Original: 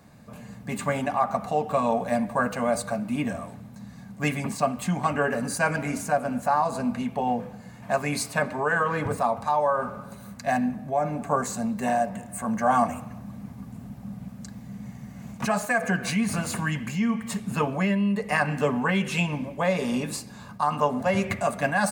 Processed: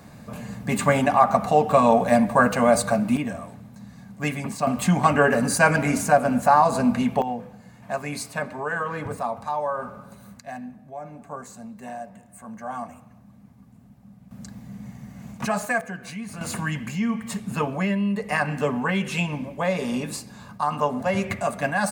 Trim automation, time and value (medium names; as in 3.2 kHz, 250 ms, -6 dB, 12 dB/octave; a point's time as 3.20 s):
+7 dB
from 3.17 s -0.5 dB
from 4.67 s +6.5 dB
from 7.22 s -3.5 dB
from 10.40 s -11.5 dB
from 14.31 s 0 dB
from 15.81 s -9.5 dB
from 16.41 s 0 dB